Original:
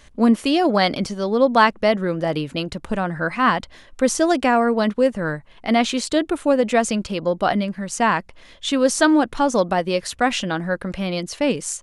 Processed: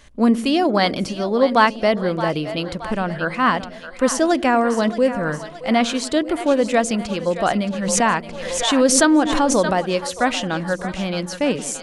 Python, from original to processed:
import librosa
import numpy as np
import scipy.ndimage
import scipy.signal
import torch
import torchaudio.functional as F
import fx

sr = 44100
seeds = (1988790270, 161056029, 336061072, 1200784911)

p1 = x + fx.echo_split(x, sr, split_hz=480.0, low_ms=96, high_ms=622, feedback_pct=52, wet_db=-12.0, dry=0)
y = fx.pre_swell(p1, sr, db_per_s=38.0, at=(7.7, 9.79))